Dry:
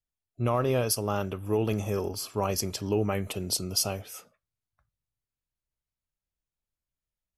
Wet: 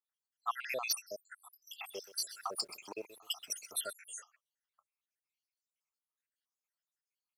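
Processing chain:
time-frequency cells dropped at random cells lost 79%
high-pass filter 1,400 Hz 12 dB per octave
high-shelf EQ 6,400 Hz −7.5 dB
soft clipping −32 dBFS, distortion −18 dB
0:01.71–0:03.93: feedback echo at a low word length 128 ms, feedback 35%, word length 11 bits, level −14 dB
level +8.5 dB

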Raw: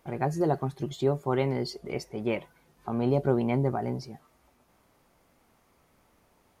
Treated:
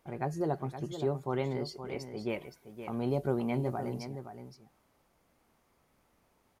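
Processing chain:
0:02.28–0:04.02: high-shelf EQ 8,000 Hz → 5,300 Hz +11 dB
single-tap delay 519 ms −10 dB
level −6 dB

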